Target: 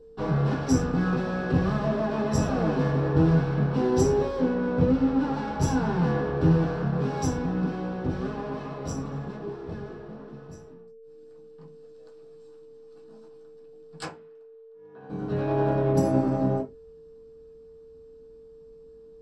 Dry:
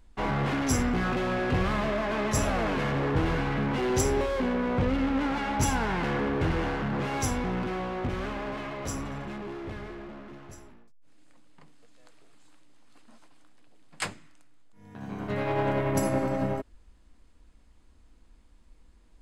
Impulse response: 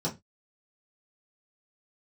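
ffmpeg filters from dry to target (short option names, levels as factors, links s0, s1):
-filter_complex "[0:a]asettb=1/sr,asplit=3[s0][s1][s2];[s0]atrim=end=14.054[s3];[s1]atrim=start=14.05:end=15.1,asetpts=PTS-STARTPTS,afade=t=in:d=0.004:c=qsin,afade=t=out:st=1.046:d=0.004:c=qsin,acrossover=split=380 3400:gain=0.158 1 0.0891[s4][s5][s6];[s4][s5][s6]amix=inputs=3:normalize=0[s7];[s2]atrim=start=15.096[s8];[s3][s7]acrossfade=d=0.004:c1=hsin:c2=qsin[s9];[s9][s8]acrossfade=d=0.004:c1=qsin:c2=hsin,aeval=exprs='val(0)+0.00355*sin(2*PI*450*n/s)':c=same[s10];[1:a]atrim=start_sample=2205[s11];[s10][s11]afir=irnorm=-1:irlink=0,volume=0.355"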